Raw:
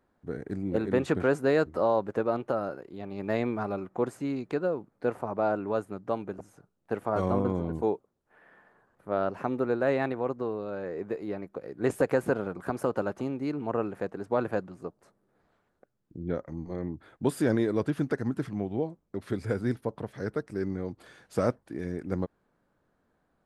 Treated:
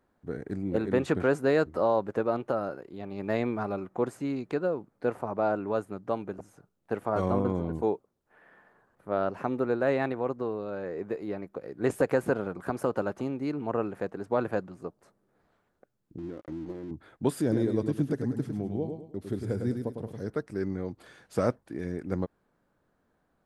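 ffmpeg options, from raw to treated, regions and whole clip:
-filter_complex "[0:a]asettb=1/sr,asplit=3[a][b][c];[a]atrim=end=16.184[d];[b]atrim=start=16.18:end=16.91,asetpts=PTS-STARTPTS,afade=t=in:d=0.004:c=qsin,afade=t=out:st=0.726:d=0.004:c=qsin,acompressor=threshold=-37dB:ratio=16:attack=3.2:release=140:knee=1:detection=peak,equalizer=f=320:t=o:w=0.46:g=14.5,aeval=exprs='sgn(val(0))*max(abs(val(0))-0.00188,0)':c=same[e];[c]atrim=start=16.906[f];[d][e]acrossfade=d=0.004:c1=hsin:c2=qsin[g];[g][f]acrossfade=d=0.004:c1=qsin:c2=hsin,asettb=1/sr,asplit=3[h][i][j];[h]atrim=end=17.414[k];[i]atrim=start=17.41:end=20.3,asetpts=PTS-STARTPTS,afade=t=in:d=0.004:c=qsin,afade=t=out:st=2.886:d=0.004:c=qsin,equalizer=f=1.6k:t=o:w=2.5:g=-10,aecho=1:1:104|208|312|416:0.501|0.17|0.0579|0.0197,atrim=end_sample=127449[l];[j]atrim=start=20.296[m];[k][l]acrossfade=d=0.004:c1=hsin:c2=qsin[n];[n][m]acrossfade=d=0.004:c1=qsin:c2=hsin"

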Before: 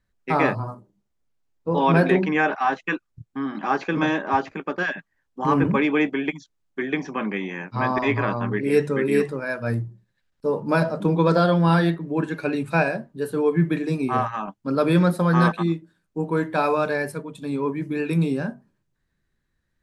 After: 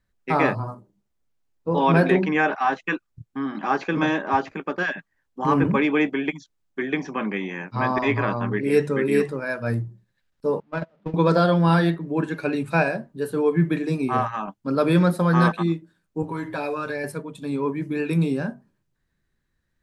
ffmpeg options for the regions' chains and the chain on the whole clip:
-filter_complex "[0:a]asettb=1/sr,asplit=3[a][b][c];[a]atrim=end=10.604[d];[b]atrim=start=10.6:end=11.14,asetpts=PTS-STARTPTS,afade=t=in:d=0.004:c=qsin,afade=t=out:st=0.536:d=0.004:c=qsin,aeval=exprs='val(0)+0.5*0.0562*sgn(val(0))':c=same,lowpass=3.1k,agate=range=-37dB:threshold=-16dB:ratio=16:release=100:detection=peak[e];[c]atrim=start=11.136[f];[d][e]acrossfade=d=0.004:c1=hsin:c2=qsin[g];[g][f]acrossfade=d=0.004:c1=qsin:c2=hsin,asettb=1/sr,asplit=3[h][i][j];[h]atrim=end=16.224[k];[i]atrim=start=16.22:end=17.04,asetpts=PTS-STARTPTS,afade=t=in:d=0.004:c=qsin,afade=t=out:st=0.816:d=0.004:c=qsin,lowshelf=f=120:t=q:w=3:g=6,aecho=1:1:7.3:0.81,atrim=end_sample=36162,acompressor=threshold=-27dB:ratio=2.5:attack=3.2:release=140:knee=1:detection=peak[l];[j]atrim=start=17.036[m];[k][l]acrossfade=d=0.004:c1=hsin:c2=qsin[n];[n][m]acrossfade=d=0.004:c1=qsin:c2=hsin"

